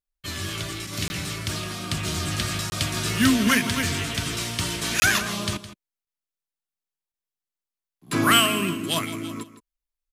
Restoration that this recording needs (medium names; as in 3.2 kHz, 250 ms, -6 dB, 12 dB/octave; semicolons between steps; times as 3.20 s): interpolate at 1.08/2.70/5.00/6.05/7.12 s, 20 ms; inverse comb 163 ms -14 dB